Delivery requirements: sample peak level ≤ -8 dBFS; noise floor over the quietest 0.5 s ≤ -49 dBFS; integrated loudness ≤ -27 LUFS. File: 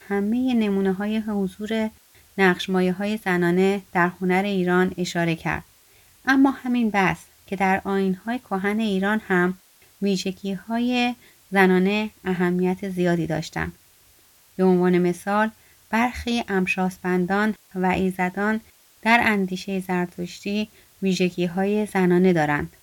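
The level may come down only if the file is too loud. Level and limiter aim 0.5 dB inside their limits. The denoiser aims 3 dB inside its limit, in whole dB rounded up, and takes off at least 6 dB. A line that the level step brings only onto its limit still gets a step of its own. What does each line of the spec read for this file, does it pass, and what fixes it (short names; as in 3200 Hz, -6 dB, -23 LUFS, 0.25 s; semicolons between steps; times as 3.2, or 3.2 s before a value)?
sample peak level -4.0 dBFS: fail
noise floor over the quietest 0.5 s -55 dBFS: OK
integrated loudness -22.5 LUFS: fail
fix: gain -5 dB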